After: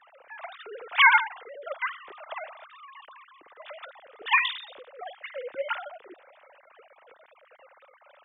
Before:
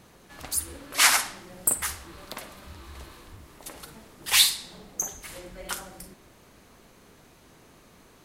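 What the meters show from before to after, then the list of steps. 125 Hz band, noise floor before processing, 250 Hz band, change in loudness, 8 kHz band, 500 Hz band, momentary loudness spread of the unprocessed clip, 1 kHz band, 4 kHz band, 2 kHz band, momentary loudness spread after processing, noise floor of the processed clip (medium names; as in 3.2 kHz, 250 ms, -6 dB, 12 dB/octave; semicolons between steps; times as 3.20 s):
under -30 dB, -56 dBFS, under -10 dB, -0.5 dB, under -40 dB, +5.5 dB, 23 LU, +6.5 dB, -7.0 dB, +5.5 dB, 25 LU, -59 dBFS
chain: formants replaced by sine waves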